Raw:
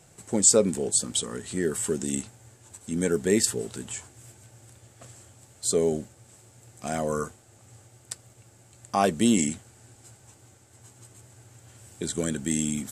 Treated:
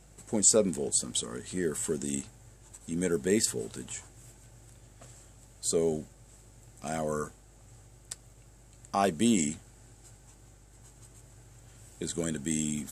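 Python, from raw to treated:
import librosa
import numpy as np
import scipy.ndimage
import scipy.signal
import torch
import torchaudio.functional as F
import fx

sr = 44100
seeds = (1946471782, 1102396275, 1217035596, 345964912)

y = fx.dmg_buzz(x, sr, base_hz=50.0, harmonics=38, level_db=-54.0, tilt_db=-8, odd_only=False)
y = y * librosa.db_to_amplitude(-4.0)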